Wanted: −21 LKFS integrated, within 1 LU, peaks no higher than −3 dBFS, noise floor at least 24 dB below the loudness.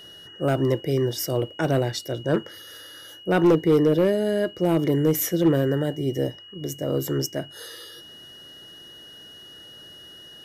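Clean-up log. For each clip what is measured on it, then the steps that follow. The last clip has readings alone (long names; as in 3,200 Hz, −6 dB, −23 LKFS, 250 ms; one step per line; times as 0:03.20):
share of clipped samples 0.6%; peaks flattened at −12.5 dBFS; interfering tone 2,900 Hz; level of the tone −43 dBFS; integrated loudness −23.5 LKFS; sample peak −12.5 dBFS; target loudness −21.0 LKFS
→ clipped peaks rebuilt −12.5 dBFS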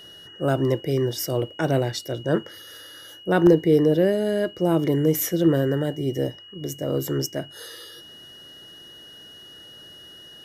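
share of clipped samples 0.0%; interfering tone 2,900 Hz; level of the tone −43 dBFS
→ notch filter 2,900 Hz, Q 30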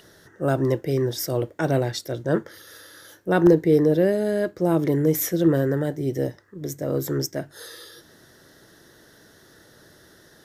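interfering tone none found; integrated loudness −22.5 LKFS; sample peak −3.5 dBFS; target loudness −21.0 LKFS
→ level +1.5 dB
brickwall limiter −3 dBFS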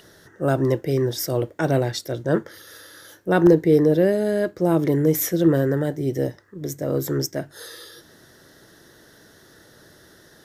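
integrated loudness −21.5 LKFS; sample peak −3.0 dBFS; background noise floor −52 dBFS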